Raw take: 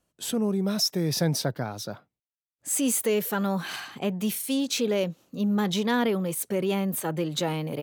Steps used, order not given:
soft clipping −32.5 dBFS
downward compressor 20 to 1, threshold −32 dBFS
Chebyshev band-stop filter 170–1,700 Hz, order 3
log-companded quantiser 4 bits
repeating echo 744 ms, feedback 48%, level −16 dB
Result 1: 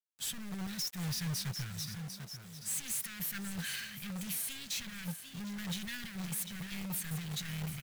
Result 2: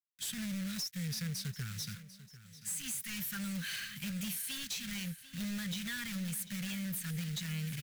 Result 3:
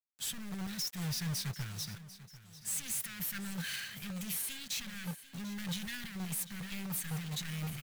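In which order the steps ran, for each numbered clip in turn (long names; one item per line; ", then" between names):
repeating echo, then soft clipping, then Chebyshev band-stop filter, then downward compressor, then log-companded quantiser
log-companded quantiser, then Chebyshev band-stop filter, then downward compressor, then soft clipping, then repeating echo
soft clipping, then Chebyshev band-stop filter, then downward compressor, then log-companded quantiser, then repeating echo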